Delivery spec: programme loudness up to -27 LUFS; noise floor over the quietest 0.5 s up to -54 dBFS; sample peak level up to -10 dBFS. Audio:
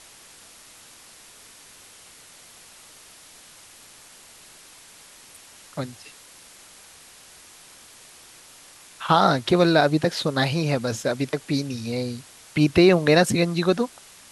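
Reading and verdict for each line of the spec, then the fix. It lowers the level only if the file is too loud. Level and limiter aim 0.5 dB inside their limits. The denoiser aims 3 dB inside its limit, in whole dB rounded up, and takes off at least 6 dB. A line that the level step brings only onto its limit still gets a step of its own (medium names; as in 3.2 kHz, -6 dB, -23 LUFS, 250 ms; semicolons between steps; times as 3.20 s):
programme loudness -21.5 LUFS: fail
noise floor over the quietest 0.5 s -48 dBFS: fail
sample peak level -4.5 dBFS: fail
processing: noise reduction 6 dB, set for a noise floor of -48 dBFS; trim -6 dB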